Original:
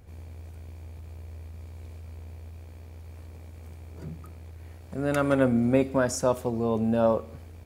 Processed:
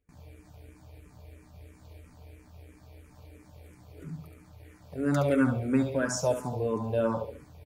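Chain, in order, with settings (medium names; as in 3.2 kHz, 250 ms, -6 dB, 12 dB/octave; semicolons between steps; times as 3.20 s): gate with hold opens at -38 dBFS; comb 6.8 ms, depth 49%; on a send: feedback delay 70 ms, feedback 41%, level -7 dB; on the sum: barber-pole phaser -3 Hz; trim -1.5 dB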